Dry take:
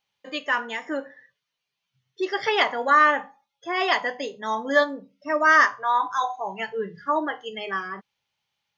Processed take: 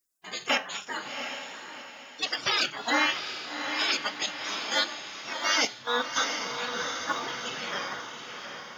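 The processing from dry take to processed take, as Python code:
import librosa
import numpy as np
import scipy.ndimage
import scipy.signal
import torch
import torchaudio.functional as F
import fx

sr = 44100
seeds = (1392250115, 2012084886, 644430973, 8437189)

p1 = fx.spec_gate(x, sr, threshold_db=-20, keep='weak')
p2 = fx.level_steps(p1, sr, step_db=21)
p3 = p1 + F.gain(torch.from_numpy(p2), 1.5).numpy()
p4 = fx.echo_diffused(p3, sr, ms=731, feedback_pct=46, wet_db=-6.5)
p5 = fx.rider(p4, sr, range_db=4, speed_s=2.0)
p6 = fx.band_widen(p5, sr, depth_pct=70, at=(5.65, 6.17))
y = F.gain(torch.from_numpy(p6), 6.5).numpy()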